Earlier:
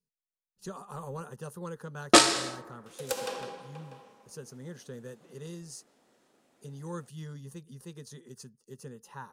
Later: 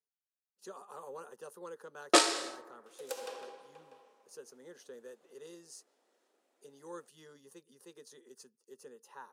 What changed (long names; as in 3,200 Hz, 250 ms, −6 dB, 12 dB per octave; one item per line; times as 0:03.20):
second sound −3.0 dB
master: add four-pole ladder high-pass 290 Hz, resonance 25%